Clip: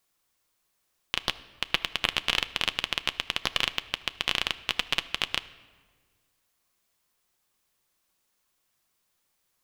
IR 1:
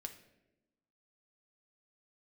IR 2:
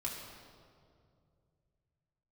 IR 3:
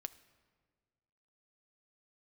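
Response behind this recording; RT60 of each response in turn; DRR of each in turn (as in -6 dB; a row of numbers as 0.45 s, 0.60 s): 3; 0.95 s, 2.3 s, 1.7 s; 4.5 dB, -4.5 dB, 11.5 dB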